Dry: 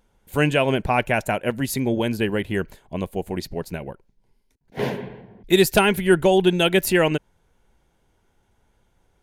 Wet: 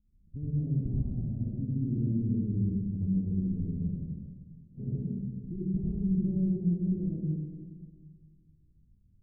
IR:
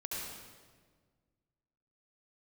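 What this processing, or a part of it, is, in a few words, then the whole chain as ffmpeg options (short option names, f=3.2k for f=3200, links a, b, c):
club heard from the street: -filter_complex "[0:a]alimiter=limit=-14.5dB:level=0:latency=1:release=117,lowpass=f=220:w=0.5412,lowpass=f=220:w=1.3066[a];[1:a]atrim=start_sample=2205[b];[a][b]afir=irnorm=-1:irlink=0,volume=-1dB"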